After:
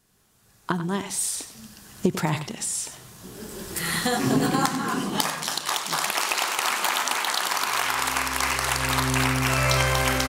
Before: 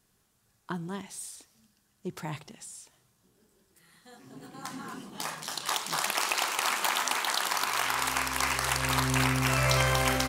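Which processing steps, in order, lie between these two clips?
recorder AGC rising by 15 dB/s; on a send: echo 95 ms -12 dB; on the sum: gain +3.5 dB

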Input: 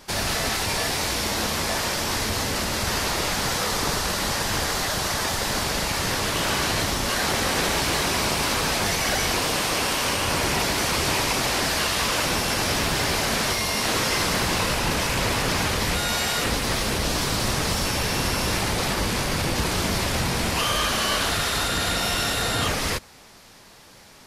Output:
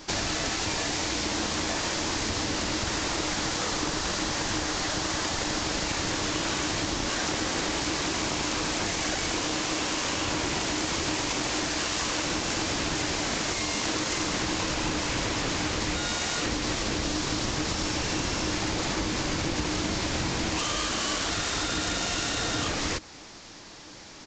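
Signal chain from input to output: self-modulated delay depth 0.15 ms; bell 310 Hz +12.5 dB 0.21 oct; downsampling 16000 Hz; high shelf 6100 Hz +8 dB; compressor 5:1, threshold -27 dBFS, peak gain reduction 8 dB; gain +1.5 dB

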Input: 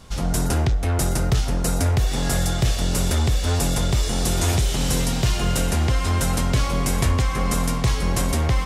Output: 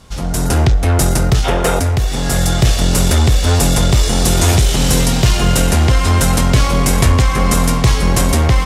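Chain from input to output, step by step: spectral gain 1.44–1.79, 330–3800 Hz +11 dB; added harmonics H 4 -23 dB, 5 -13 dB, 7 -21 dB, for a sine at -4.5 dBFS; AGC; gain -1 dB

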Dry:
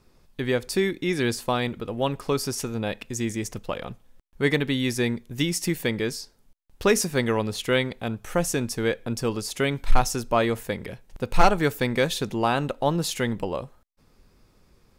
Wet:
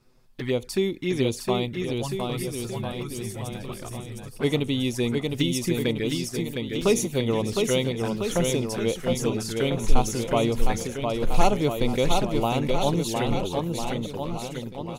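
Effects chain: spectral gain 1.66–3.82, 220–8000 Hz -8 dB; envelope flanger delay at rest 8.5 ms, full sweep at -21.5 dBFS; bouncing-ball echo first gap 0.71 s, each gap 0.9×, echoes 5

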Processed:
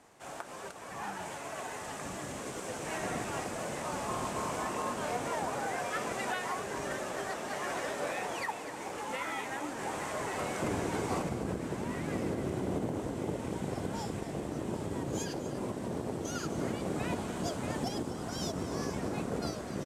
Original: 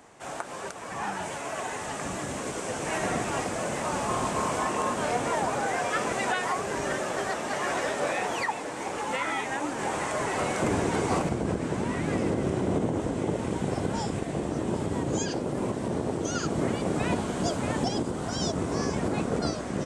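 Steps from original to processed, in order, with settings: CVSD 64 kbps; echo 0.248 s -13 dB; gain -7 dB

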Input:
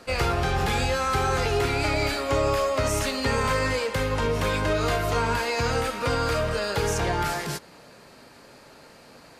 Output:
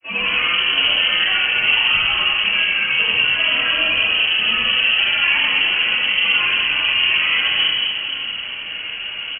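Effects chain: HPF 130 Hz 24 dB/oct; low shelf 340 Hz +10 dB; comb 4.4 ms, depth 52%; reverse; compressor 6:1, threshold -33 dBFS, peak gain reduction 16.5 dB; reverse; grains, pitch spread up and down by 7 st; reverse bouncing-ball echo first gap 80 ms, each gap 1.5×, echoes 5; reverb RT60 1.1 s, pre-delay 3 ms, DRR -12.5 dB; inverted band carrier 3100 Hz

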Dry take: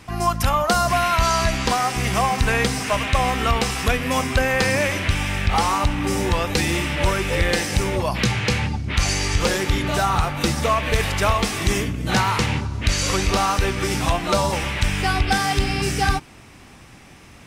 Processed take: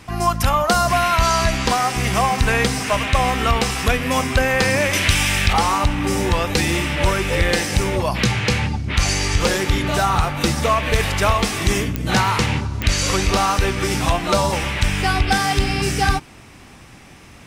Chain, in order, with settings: 4.93–5.53 high shelf 2500 Hz +11.5 dB; pops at 11.96/12.82, -9 dBFS; gain +2 dB

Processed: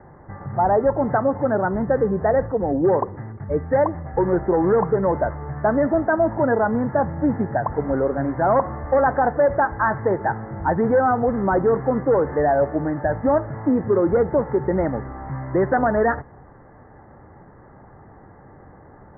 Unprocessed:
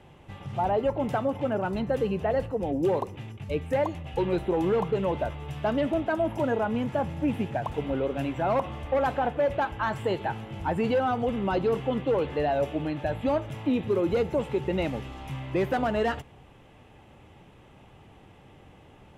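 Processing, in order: steep low-pass 1900 Hz 96 dB/oct; low shelf 460 Hz -3.5 dB; gain +9 dB

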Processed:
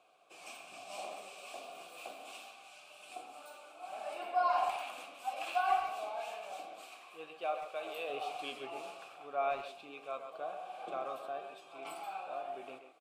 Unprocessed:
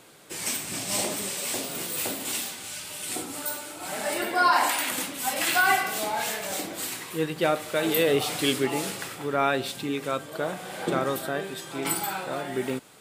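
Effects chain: vowel filter a; high shelf 3700 Hz +8 dB; flange 1.2 Hz, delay 8 ms, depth 8.9 ms, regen +82%; 6.82–8.1 low shelf 260 Hz -8.5 dB; speakerphone echo 0.13 s, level -8 dB; gain +1 dB

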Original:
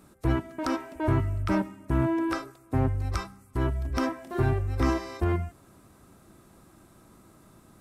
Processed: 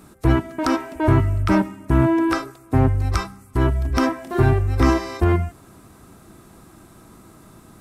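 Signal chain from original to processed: notch 560 Hz, Q 12; gain +8.5 dB

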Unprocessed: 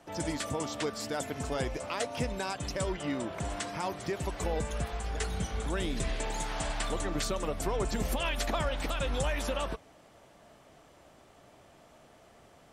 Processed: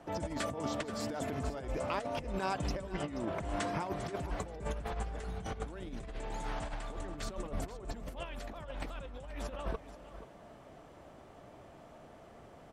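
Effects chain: high shelf 2200 Hz -11 dB; negative-ratio compressor -37 dBFS, ratio -0.5; echo 0.48 s -14 dB

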